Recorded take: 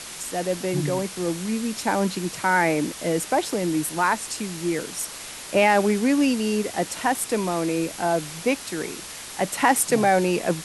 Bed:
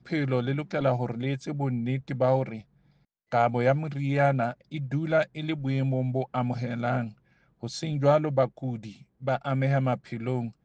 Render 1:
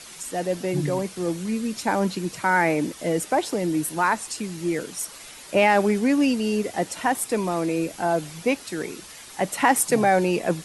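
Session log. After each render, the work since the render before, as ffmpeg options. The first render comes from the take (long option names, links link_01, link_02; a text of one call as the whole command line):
ffmpeg -i in.wav -af "afftdn=noise_reduction=8:noise_floor=-38" out.wav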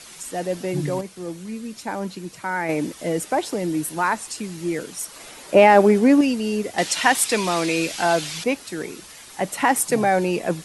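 ffmpeg -i in.wav -filter_complex "[0:a]asettb=1/sr,asplit=3[link_01][link_02][link_03];[link_01]atrim=end=5.164[link_04];[link_02]atrim=start=5.16:end=6.21,asetpts=PTS-STARTPTS,afade=type=in:duration=0.004:curve=qsin,afade=type=out:start_time=1.046:duration=0.004:curve=qsin,equalizer=frequency=470:width=0.43:gain=7.5[link_05];[link_03]atrim=start=6.206[link_06];[link_04][link_05]acrossfade=duration=0.004:curve1=hsin:curve2=qsin[link_07];[link_07][link_06]acrossfade=duration=0.004:curve1=qsin:curve2=hsin,asettb=1/sr,asplit=3[link_08][link_09][link_10];[link_08]atrim=end=6.784[link_11];[link_09]atrim=start=6.78:end=8.44,asetpts=PTS-STARTPTS,afade=type=in:duration=0.004:curve=qsin,afade=type=out:start_time=1.656:duration=0.004:curve=qsin,equalizer=frequency=3800:width_type=o:width=2.9:gain=14.5[link_12];[link_10]atrim=start=8.436[link_13];[link_11][link_12]acrossfade=duration=0.004:curve1=hsin:curve2=qsin[link_14];[link_14][link_13]acrossfade=duration=0.004:curve1=qsin:curve2=hsin,asplit=3[link_15][link_16][link_17];[link_15]atrim=end=1.012[link_18];[link_16]atrim=start=1.008:end=2.692,asetpts=PTS-STARTPTS,volume=-5.5dB[link_19];[link_17]atrim=start=2.688[link_20];[link_18][link_19]acrossfade=duration=0.004:curve1=hsin:curve2=hsin[link_21];[link_21][link_20]acrossfade=duration=0.004:curve1=hsin:curve2=hsin" out.wav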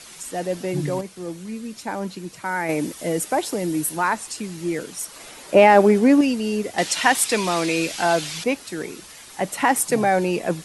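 ffmpeg -i in.wav -filter_complex "[0:a]asettb=1/sr,asplit=3[link_01][link_02][link_03];[link_01]atrim=end=2.454[link_04];[link_02]atrim=start=2.45:end=3.97,asetpts=PTS-STARTPTS,afade=type=in:duration=0.004:curve=qsin,afade=type=out:start_time=1.516:duration=0.004:curve=qsin,highshelf=frequency=9400:gain=9[link_05];[link_03]atrim=start=3.966[link_06];[link_04][link_05]acrossfade=duration=0.004:curve1=hsin:curve2=qsin[link_07];[link_07][link_06]acrossfade=duration=0.004:curve1=qsin:curve2=hsin" out.wav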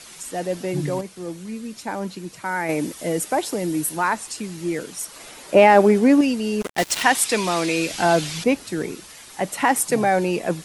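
ffmpeg -i in.wav -filter_complex "[0:a]asplit=3[link_01][link_02][link_03];[link_01]afade=type=out:start_time=6.6:duration=0.02[link_04];[link_02]acrusher=bits=3:mix=0:aa=0.5,afade=type=in:start_time=6.6:duration=0.02,afade=type=out:start_time=7.02:duration=0.02[link_05];[link_03]afade=type=in:start_time=7.02:duration=0.02[link_06];[link_04][link_05][link_06]amix=inputs=3:normalize=0,asettb=1/sr,asplit=3[link_07][link_08][link_09];[link_07]atrim=end=7.904[link_10];[link_08]atrim=start=7.9:end=8.95,asetpts=PTS-STARTPTS,afade=type=in:duration=0.004:curve=qsin,afade=type=out:start_time=1.046:duration=0.004:curve=qsin,lowshelf=frequency=370:gain=7.5[link_11];[link_09]atrim=start=8.946[link_12];[link_10][link_11]acrossfade=duration=0.004:curve1=hsin:curve2=qsin[link_13];[link_13][link_12]acrossfade=duration=0.004:curve1=qsin:curve2=hsin" out.wav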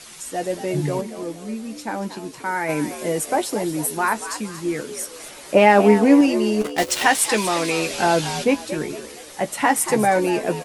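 ffmpeg -i in.wav -filter_complex "[0:a]asplit=2[link_01][link_02];[link_02]adelay=14,volume=-8dB[link_03];[link_01][link_03]amix=inputs=2:normalize=0,asplit=2[link_04][link_05];[link_05]asplit=4[link_06][link_07][link_08][link_09];[link_06]adelay=232,afreqshift=75,volume=-12dB[link_10];[link_07]adelay=464,afreqshift=150,volume=-20.6dB[link_11];[link_08]adelay=696,afreqshift=225,volume=-29.3dB[link_12];[link_09]adelay=928,afreqshift=300,volume=-37.9dB[link_13];[link_10][link_11][link_12][link_13]amix=inputs=4:normalize=0[link_14];[link_04][link_14]amix=inputs=2:normalize=0" out.wav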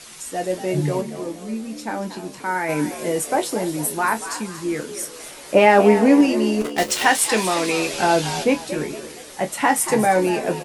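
ffmpeg -i in.wav -filter_complex "[0:a]asplit=2[link_01][link_02];[link_02]adelay=27,volume=-10.5dB[link_03];[link_01][link_03]amix=inputs=2:normalize=0,aecho=1:1:295:0.106" out.wav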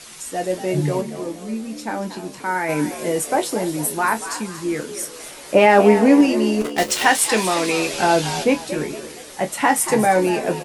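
ffmpeg -i in.wav -af "volume=1dB,alimiter=limit=-2dB:level=0:latency=1" out.wav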